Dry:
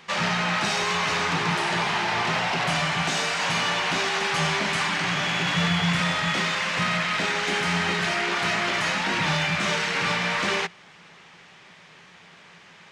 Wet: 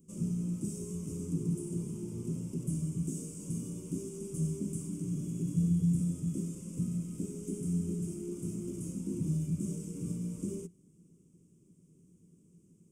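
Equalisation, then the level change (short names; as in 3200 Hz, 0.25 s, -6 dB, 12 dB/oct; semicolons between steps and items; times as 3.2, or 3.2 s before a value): elliptic band-stop 320–8600 Hz, stop band 40 dB; -1.5 dB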